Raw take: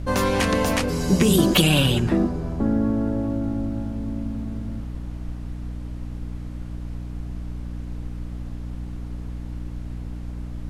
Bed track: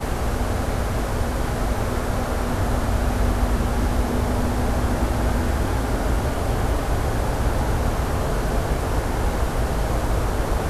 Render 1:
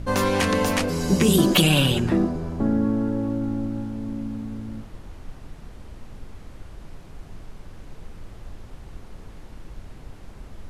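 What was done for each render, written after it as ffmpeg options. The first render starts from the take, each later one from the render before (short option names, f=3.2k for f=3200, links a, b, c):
-af "bandreject=f=60:t=h:w=4,bandreject=f=120:t=h:w=4,bandreject=f=180:t=h:w=4,bandreject=f=240:t=h:w=4,bandreject=f=300:t=h:w=4,bandreject=f=360:t=h:w=4,bandreject=f=420:t=h:w=4,bandreject=f=480:t=h:w=4,bandreject=f=540:t=h:w=4,bandreject=f=600:t=h:w=4,bandreject=f=660:t=h:w=4"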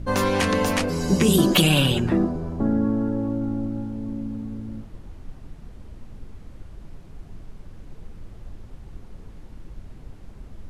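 -af "afftdn=nr=6:nf=-43"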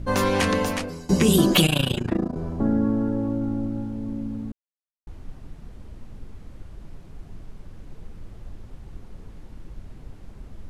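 -filter_complex "[0:a]asettb=1/sr,asplit=3[a][b][c];[a]atrim=end=1.664[d];[b]atrim=start=1.66:end=2.36,asetpts=PTS-STARTPTS,afade=t=in:d=0.004:c=qsin,afade=t=out:st=0.696:d=0.004:c=qsin,tremolo=f=28:d=0.919[e];[c]atrim=start=2.356[f];[d][e]acrossfade=d=0.004:c1=hsin:c2=qsin[g];[g][f]acrossfade=d=0.004:c1=qsin:c2=hsin,asplit=4[h][i][j][k];[h]atrim=end=1.09,asetpts=PTS-STARTPTS,afade=t=out:st=0.49:d=0.6:silence=0.105925[l];[i]atrim=start=1.09:end=4.52,asetpts=PTS-STARTPTS,afade=t=in:d=0.004:c=hsin:silence=0.105925,afade=t=out:st=3.426:d=0.004:c=hsin[m];[j]atrim=start=4.52:end=5.07,asetpts=PTS-STARTPTS,volume=0[n];[k]atrim=start=5.07,asetpts=PTS-STARTPTS,afade=t=in:d=0.004:c=hsin[o];[l][m][n][o]concat=n=4:v=0:a=1"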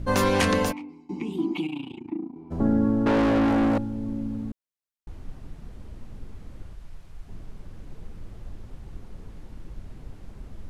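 -filter_complex "[0:a]asplit=3[a][b][c];[a]afade=t=out:st=0.71:d=0.02[d];[b]asplit=3[e][f][g];[e]bandpass=f=300:t=q:w=8,volume=0dB[h];[f]bandpass=f=870:t=q:w=8,volume=-6dB[i];[g]bandpass=f=2.24k:t=q:w=8,volume=-9dB[j];[h][i][j]amix=inputs=3:normalize=0,afade=t=in:st=0.71:d=0.02,afade=t=out:st=2.5:d=0.02[k];[c]afade=t=in:st=2.5:d=0.02[l];[d][k][l]amix=inputs=3:normalize=0,asettb=1/sr,asplit=3[m][n][o];[m]atrim=end=3.064[p];[n]atrim=start=3.06:end=3.78,asetpts=PTS-STARTPTS,afade=t=in:d=0.004:c=qsin,afade=t=out:st=0.716:d=0.004:c=qsin,asplit=2[q][r];[r]highpass=f=720:p=1,volume=32dB,asoftclip=type=tanh:threshold=-14.5dB[s];[q][s]amix=inputs=2:normalize=0,lowpass=f=4k:p=1,volume=-6dB[t];[o]atrim=start=3.776[u];[p][t]acrossfade=d=0.004:c1=hsin:c2=qsin[v];[v][u]acrossfade=d=0.004:c1=qsin:c2=hsin,asettb=1/sr,asplit=3[w][x][y];[w]atrim=end=6.734[z];[x]atrim=start=6.73:end=7.28,asetpts=PTS-STARTPTS,afade=t=in:d=0.004:c=qsin,afade=t=out:st=0.546:d=0.004:c=qsin,equalizer=f=260:t=o:w=2.6:g=-10.5[aa];[y]atrim=start=7.276[ab];[z][aa]acrossfade=d=0.004:c1=hsin:c2=qsin[ac];[ac][ab]acrossfade=d=0.004:c1=qsin:c2=hsin"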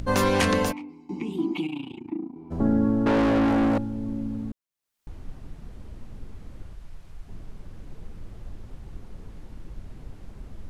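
-af "acompressor=mode=upward:threshold=-38dB:ratio=2.5"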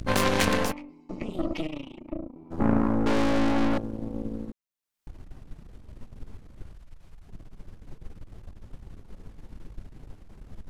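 -af "aeval=exprs='0.355*(cos(1*acos(clip(val(0)/0.355,-1,1)))-cos(1*PI/2))+0.1*(cos(2*acos(clip(val(0)/0.355,-1,1)))-cos(2*PI/2))+0.0501*(cos(3*acos(clip(val(0)/0.355,-1,1)))-cos(3*PI/2))+0.0126*(cos(6*acos(clip(val(0)/0.355,-1,1)))-cos(6*PI/2))+0.0562*(cos(8*acos(clip(val(0)/0.355,-1,1)))-cos(8*PI/2))':c=same"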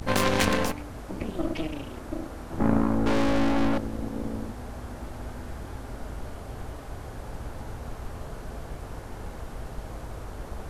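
-filter_complex "[1:a]volume=-16.5dB[a];[0:a][a]amix=inputs=2:normalize=0"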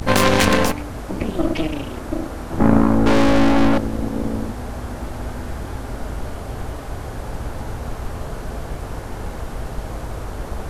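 -af "volume=9dB,alimiter=limit=-1dB:level=0:latency=1"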